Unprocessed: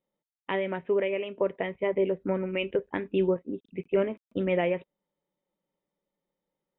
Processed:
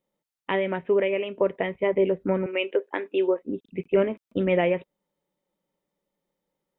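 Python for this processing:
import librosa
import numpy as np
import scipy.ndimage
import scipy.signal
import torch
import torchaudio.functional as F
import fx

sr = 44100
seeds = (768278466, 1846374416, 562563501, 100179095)

y = fx.highpass(x, sr, hz=340.0, slope=24, at=(2.46, 3.43))
y = y * 10.0 ** (4.0 / 20.0)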